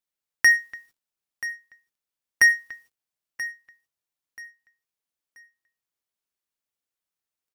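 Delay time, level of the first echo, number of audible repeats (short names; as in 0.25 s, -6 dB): 0.982 s, -15.0 dB, 2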